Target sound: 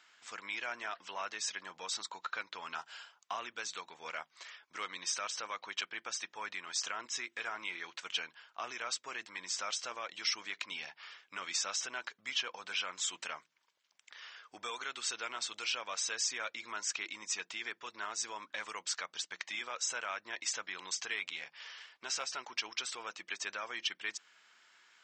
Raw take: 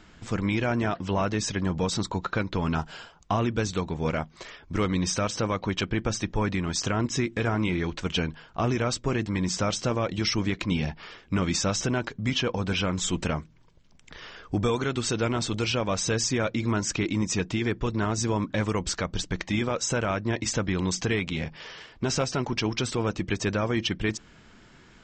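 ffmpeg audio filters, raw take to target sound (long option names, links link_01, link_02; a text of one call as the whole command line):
ffmpeg -i in.wav -af "highpass=1200,volume=-5.5dB" out.wav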